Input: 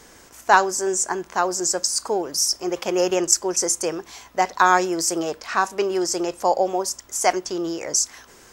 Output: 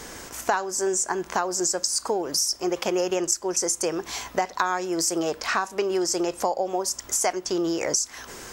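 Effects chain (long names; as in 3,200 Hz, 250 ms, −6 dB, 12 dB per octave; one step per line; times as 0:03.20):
downward compressor 6 to 1, threshold −31 dBFS, peak gain reduction 20.5 dB
level +8.5 dB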